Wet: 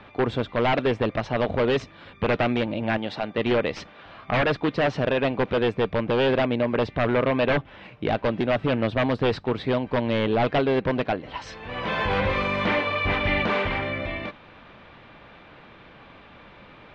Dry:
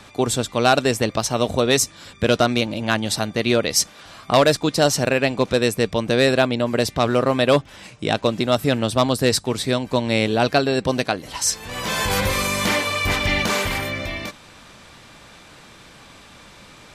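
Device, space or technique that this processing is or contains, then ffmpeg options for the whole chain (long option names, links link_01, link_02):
synthesiser wavefolder: -filter_complex "[0:a]asettb=1/sr,asplit=3[link_01][link_02][link_03];[link_01]atrim=end=2.974[link_04];[link_02]atrim=start=2.97:end=3.38,asetpts=PTS-STARTPTS,afade=type=in:duration=0.004:curve=qsin,afade=type=out:start_time=0.406:duration=0.004:curve=qsin,highpass=frequency=280:poles=1[link_05];[link_03]atrim=start=3.376[link_06];[link_04][link_05]acrossfade=duration=0.004:curve1=hsin:curve2=qsin[link_07];[link_07][link_06]acrossfade=duration=0.004:curve1=qsin:curve2=hsin,equalizer=frequency=550:width=0.63:gain=3,aeval=exprs='0.251*(abs(mod(val(0)/0.251+3,4)-2)-1)':channel_layout=same,lowpass=frequency=3100:width=0.5412,lowpass=frequency=3100:width=1.3066,volume=-3dB"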